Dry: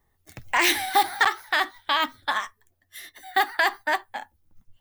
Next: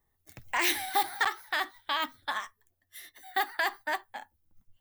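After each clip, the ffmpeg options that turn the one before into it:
-af "highshelf=f=11k:g=7,volume=-7.5dB"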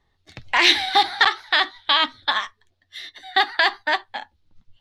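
-af "lowpass=f=4k:t=q:w=2.7,volume=9dB"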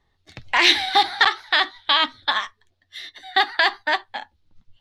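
-af anull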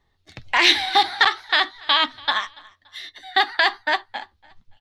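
-af "aecho=1:1:286|572:0.0631|0.0227"

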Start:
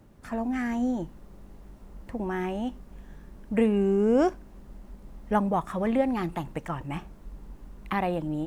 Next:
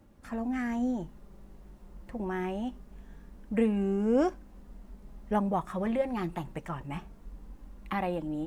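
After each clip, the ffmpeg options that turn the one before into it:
-af "flanger=delay=3.6:depth=2:regen=-48:speed=0.25:shape=sinusoidal"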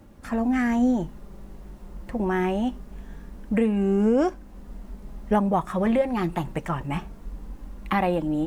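-af "alimiter=limit=-21.5dB:level=0:latency=1:release=480,volume=9dB"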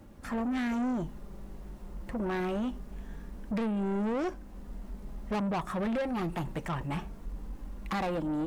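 -af "asoftclip=type=tanh:threshold=-26dB,volume=-2dB"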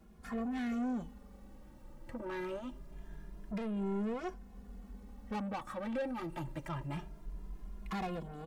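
-filter_complex "[0:a]asplit=2[a][b];[b]adelay=2.4,afreqshift=0.25[c];[a][c]amix=inputs=2:normalize=1,volume=-4dB"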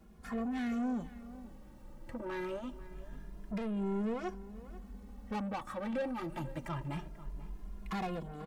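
-filter_complex "[0:a]asplit=2[a][b];[b]adelay=489.8,volume=-16dB,highshelf=f=4k:g=-11[c];[a][c]amix=inputs=2:normalize=0,volume=1dB"

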